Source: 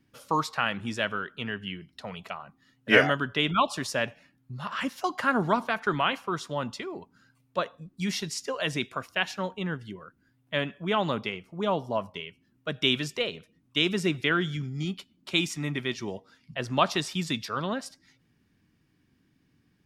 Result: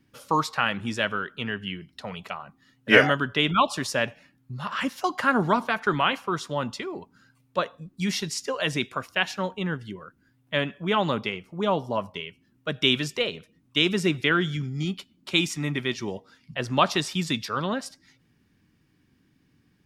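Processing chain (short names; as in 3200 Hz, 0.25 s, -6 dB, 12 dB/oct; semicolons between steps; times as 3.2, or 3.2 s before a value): notch 670 Hz, Q 20; gain +3 dB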